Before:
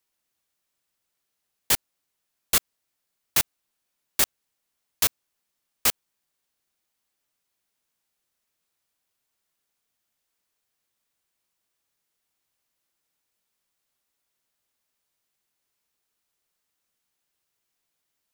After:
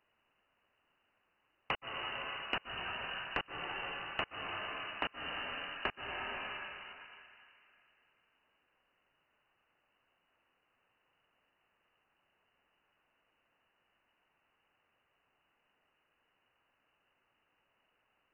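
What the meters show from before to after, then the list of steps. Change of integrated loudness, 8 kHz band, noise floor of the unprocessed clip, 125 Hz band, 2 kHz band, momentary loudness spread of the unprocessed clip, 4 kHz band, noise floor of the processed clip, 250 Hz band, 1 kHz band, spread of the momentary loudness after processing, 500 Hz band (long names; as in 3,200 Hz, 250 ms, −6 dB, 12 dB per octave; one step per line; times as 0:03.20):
−15.0 dB, below −40 dB, −80 dBFS, −8.5 dB, −2.0 dB, 1 LU, −8.5 dB, −79 dBFS, −6.0 dB, −0.5 dB, 8 LU, −3.0 dB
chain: parametric band 590 Hz −7.5 dB 1.9 octaves
dense smooth reverb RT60 2.9 s, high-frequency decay 0.65×, pre-delay 110 ms, DRR 8 dB
voice inversion scrambler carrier 2,900 Hz
downward compressor 5 to 1, threshold −49 dBFS, peak gain reduction 19.5 dB
low-shelf EQ 360 Hz −8 dB
level +13.5 dB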